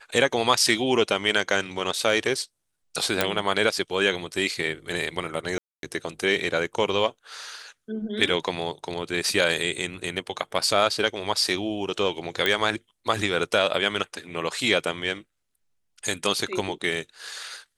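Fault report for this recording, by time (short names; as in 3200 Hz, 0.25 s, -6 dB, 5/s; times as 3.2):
3.21 pop
5.58–5.83 gap 0.252 s
12.46 pop -9 dBFS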